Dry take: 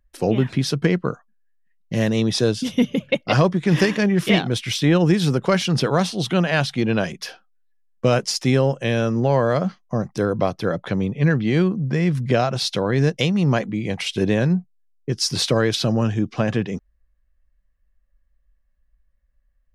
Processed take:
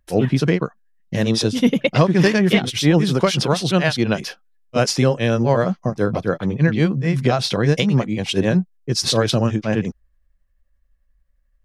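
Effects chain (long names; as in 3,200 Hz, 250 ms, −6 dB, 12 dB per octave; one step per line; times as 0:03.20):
time stretch by overlap-add 0.59×, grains 175 ms
level +3 dB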